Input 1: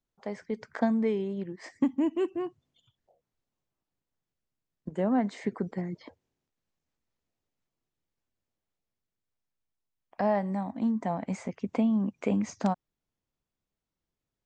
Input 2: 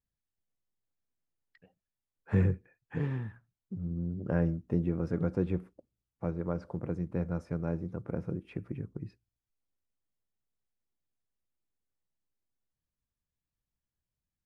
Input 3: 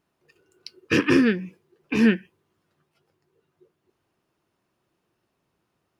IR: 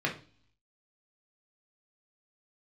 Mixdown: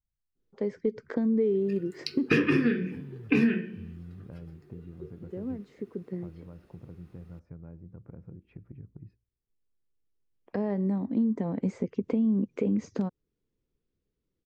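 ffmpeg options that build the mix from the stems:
-filter_complex "[0:a]lowpass=5.6k,adynamicequalizer=threshold=0.00282:dfrequency=2400:dqfactor=1.2:tfrequency=2400:tqfactor=1.2:attack=5:release=100:ratio=0.375:range=2.5:mode=cutabove:tftype=bell,alimiter=limit=-21dB:level=0:latency=1:release=146,adelay=350,volume=-2dB[a];[1:a]acompressor=threshold=-39dB:ratio=4,aemphasis=mode=reproduction:type=bsi,volume=-10dB,asplit=2[b][c];[2:a]adelay=1400,volume=2dB,asplit=2[d][e];[e]volume=-5.5dB[f];[c]apad=whole_len=652696[g];[a][g]sidechaincompress=threshold=-52dB:ratio=8:attack=8.2:release=1490[h];[h][d]amix=inputs=2:normalize=0,lowshelf=f=560:t=q:w=3:g=7.5,acompressor=threshold=-28dB:ratio=1.5,volume=0dB[i];[3:a]atrim=start_sample=2205[j];[f][j]afir=irnorm=-1:irlink=0[k];[b][i][k]amix=inputs=3:normalize=0,acompressor=threshold=-20dB:ratio=16"

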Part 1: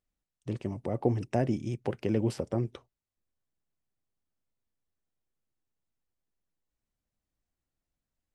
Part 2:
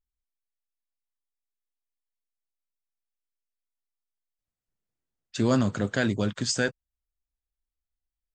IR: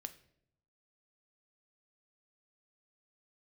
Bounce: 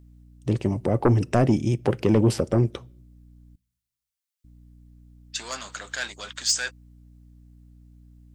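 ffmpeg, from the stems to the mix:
-filter_complex "[0:a]tiltshelf=f=970:g=3.5,aeval=exprs='0.335*sin(PI/2*2*val(0)/0.335)':c=same,aeval=exprs='val(0)+0.00447*(sin(2*PI*60*n/s)+sin(2*PI*2*60*n/s)/2+sin(2*PI*3*60*n/s)/3+sin(2*PI*4*60*n/s)/4+sin(2*PI*5*60*n/s)/5)':c=same,volume=-3.5dB,asplit=3[a][b][c];[a]atrim=end=3.56,asetpts=PTS-STARTPTS,afade=t=out:st=3.556:d=0.004:c=hsin[d];[b]atrim=start=3.56:end=4.44,asetpts=PTS-STARTPTS,volume=0[e];[c]atrim=start=4.44,asetpts=PTS-STARTPTS,afade=t=in:d=0.004:c=hsin[f];[d][e][f]concat=n=3:v=0:a=1,asplit=2[g][h];[h]volume=-10.5dB[i];[1:a]asoftclip=type=tanh:threshold=-19.5dB,highpass=970,volume=0dB[j];[2:a]atrim=start_sample=2205[k];[i][k]afir=irnorm=-1:irlink=0[l];[g][j][l]amix=inputs=3:normalize=0,highshelf=f=2.2k:g=8.5"

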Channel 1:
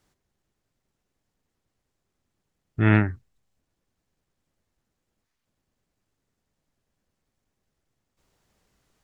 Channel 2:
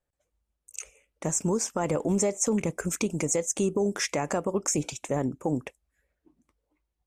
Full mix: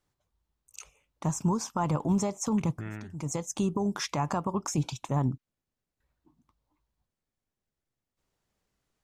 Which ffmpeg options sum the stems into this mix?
-filter_complex "[0:a]acompressor=threshold=-25dB:ratio=6,volume=-10dB,asplit=2[a][b];[1:a]equalizer=f=125:t=o:w=1:g=10,equalizer=f=500:t=o:w=1:g=-10,equalizer=f=1k:t=o:w=1:g=11,equalizer=f=2k:t=o:w=1:g=-9,equalizer=f=4k:t=o:w=1:g=7,equalizer=f=8k:t=o:w=1:g=-10,volume=-2dB,asplit=3[c][d][e];[c]atrim=end=5.38,asetpts=PTS-STARTPTS,afade=t=out:st=5.376:d=0.004:c=hsin[f];[d]atrim=start=5.38:end=6,asetpts=PTS-STARTPTS,volume=0[g];[e]atrim=start=6,asetpts=PTS-STARTPTS,afade=t=in:d=0.004:c=hsin[h];[f][g][h]concat=n=3:v=0:a=1[i];[b]apad=whole_len=311455[j];[i][j]sidechaincompress=threshold=-55dB:ratio=12:attack=21:release=233[k];[a][k]amix=inputs=2:normalize=0"

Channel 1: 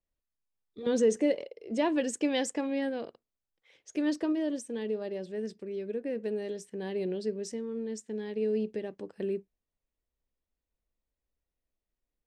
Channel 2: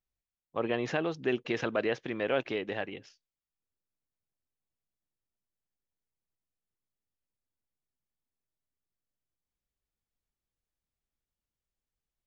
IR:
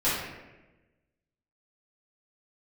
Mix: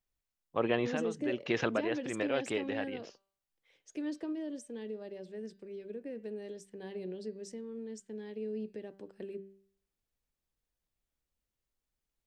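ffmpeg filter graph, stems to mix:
-filter_complex "[0:a]bandreject=f=195.1:t=h:w=4,bandreject=f=390.2:t=h:w=4,bandreject=f=585.3:t=h:w=4,bandreject=f=780.4:t=h:w=4,bandreject=f=975.5:t=h:w=4,bandreject=f=1.1706k:t=h:w=4,bandreject=f=1.3657k:t=h:w=4,bandreject=f=1.5608k:t=h:w=4,bandreject=f=1.7559k:t=h:w=4,bandreject=f=1.951k:t=h:w=4,bandreject=f=2.1461k:t=h:w=4,bandreject=f=2.3412k:t=h:w=4,bandreject=f=2.5363k:t=h:w=4,bandreject=f=2.7314k:t=h:w=4,bandreject=f=2.9265k:t=h:w=4,bandreject=f=3.1216k:t=h:w=4,bandreject=f=3.3167k:t=h:w=4,bandreject=f=3.5118k:t=h:w=4,bandreject=f=3.7069k:t=h:w=4,bandreject=f=3.902k:t=h:w=4,bandreject=f=4.0971k:t=h:w=4,bandreject=f=4.2922k:t=h:w=4,bandreject=f=4.4873k:t=h:w=4,bandreject=f=4.6824k:t=h:w=4,bandreject=f=4.8775k:t=h:w=4,acrossover=split=330[a][b];[b]acompressor=threshold=-38dB:ratio=2[c];[a][c]amix=inputs=2:normalize=0,volume=-6.5dB,asplit=2[d][e];[1:a]volume=1dB[f];[e]apad=whole_len=540847[g];[f][g]sidechaincompress=threshold=-39dB:ratio=8:attack=9.1:release=351[h];[d][h]amix=inputs=2:normalize=0"

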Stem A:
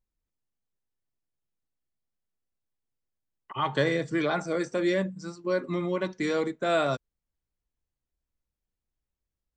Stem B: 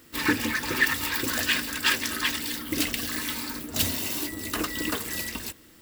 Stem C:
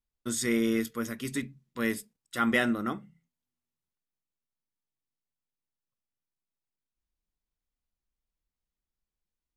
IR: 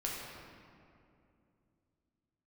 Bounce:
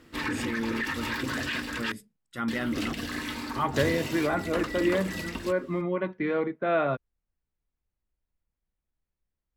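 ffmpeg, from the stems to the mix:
-filter_complex "[0:a]lowpass=f=2.6k:w=0.5412,lowpass=f=2.6k:w=1.3066,volume=0dB[a];[1:a]aemphasis=mode=reproduction:type=75fm,volume=0.5dB,asplit=3[b][c][d];[b]atrim=end=1.92,asetpts=PTS-STARTPTS,afade=t=out:st=1.916:d=0.004:c=hsin[e];[c]atrim=start=1.92:end=2.48,asetpts=PTS-STARTPTS,volume=0[f];[d]atrim=start=2.48,asetpts=PTS-STARTPTS,afade=t=in:d=0.004:c=hsin[g];[e][f][g]concat=n=3:v=0:a=1[h];[2:a]bass=f=250:g=7,treble=f=4k:g=-7,volume=-4.5dB[i];[h][i]amix=inputs=2:normalize=0,alimiter=limit=-21.5dB:level=0:latency=1:release=43,volume=0dB[j];[a][j]amix=inputs=2:normalize=0"

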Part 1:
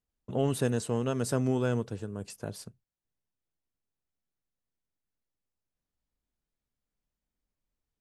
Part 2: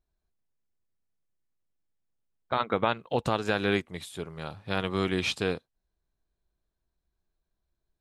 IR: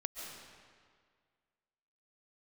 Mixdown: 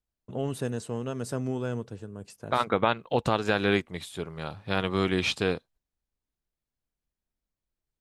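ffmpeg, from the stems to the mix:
-filter_complex "[0:a]volume=-3dB[a];[1:a]agate=range=-14dB:threshold=-58dB:ratio=16:detection=peak,volume=2dB[b];[a][b]amix=inputs=2:normalize=0,highshelf=f=9.1k:g=-4"

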